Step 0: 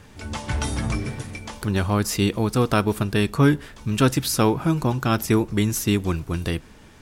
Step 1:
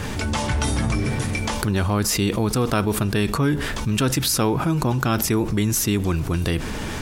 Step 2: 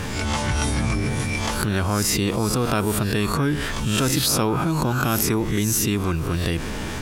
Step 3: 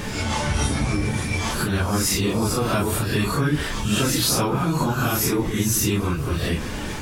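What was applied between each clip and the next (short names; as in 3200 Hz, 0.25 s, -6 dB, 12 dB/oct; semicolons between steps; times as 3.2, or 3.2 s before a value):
fast leveller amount 70%; gain -4.5 dB
spectral swells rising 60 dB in 0.53 s; gain -2 dB
phase scrambler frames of 0.1 s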